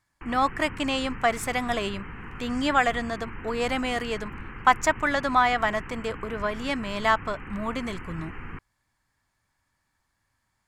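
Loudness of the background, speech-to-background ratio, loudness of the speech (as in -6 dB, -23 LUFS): -40.5 LUFS, 14.0 dB, -26.5 LUFS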